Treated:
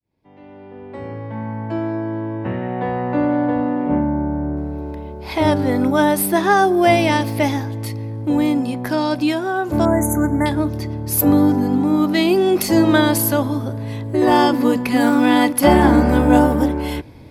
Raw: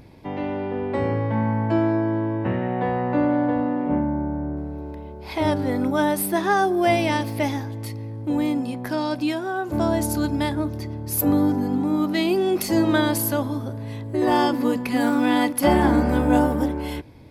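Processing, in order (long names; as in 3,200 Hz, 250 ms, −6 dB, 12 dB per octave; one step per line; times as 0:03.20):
fade in at the beginning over 4.67 s
0:09.85–0:10.46: linear-phase brick-wall band-stop 2,300–6,000 Hz
level +5.5 dB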